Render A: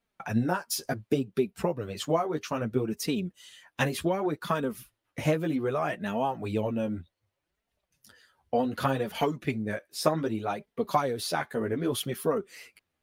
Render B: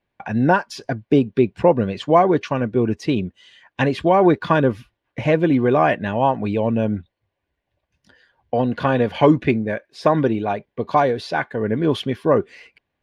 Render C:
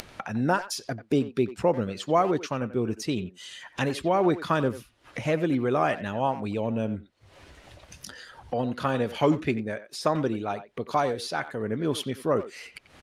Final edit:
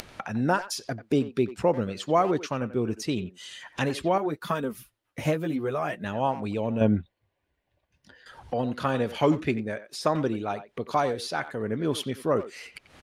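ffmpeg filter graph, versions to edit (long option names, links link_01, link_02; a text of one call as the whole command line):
ffmpeg -i take0.wav -i take1.wav -i take2.wav -filter_complex "[2:a]asplit=3[link_01][link_02][link_03];[link_01]atrim=end=4.182[link_04];[0:a]atrim=start=4.178:end=6.042[link_05];[link_02]atrim=start=6.038:end=6.812[link_06];[1:a]atrim=start=6.808:end=8.262[link_07];[link_03]atrim=start=8.258[link_08];[link_04][link_05]acrossfade=duration=0.004:curve1=hsin:curve2=hsin[link_09];[link_09][link_06]acrossfade=duration=0.004:curve1=hsin:curve2=hsin[link_10];[link_10][link_07]acrossfade=duration=0.004:curve1=hsin:curve2=hsin[link_11];[link_11][link_08]acrossfade=duration=0.004:curve1=hsin:curve2=hsin" out.wav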